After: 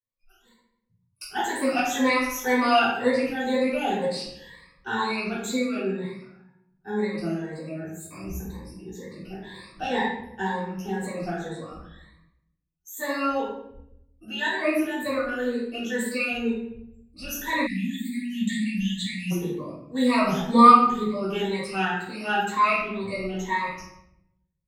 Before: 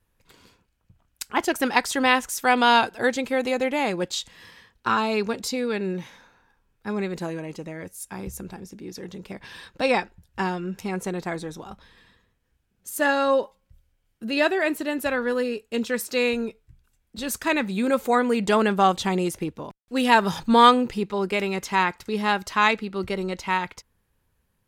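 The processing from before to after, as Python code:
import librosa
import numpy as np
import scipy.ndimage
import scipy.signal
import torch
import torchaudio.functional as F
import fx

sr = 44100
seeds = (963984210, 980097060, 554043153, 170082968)

y = fx.spec_ripple(x, sr, per_octave=1.0, drift_hz=2.0, depth_db=22)
y = fx.noise_reduce_blind(y, sr, reduce_db=23)
y = fx.room_shoebox(y, sr, seeds[0], volume_m3=210.0, walls='mixed', distance_m=3.5)
y = fx.spec_erase(y, sr, start_s=17.67, length_s=1.64, low_hz=300.0, high_hz=1700.0)
y = y * 10.0 ** (-17.5 / 20.0)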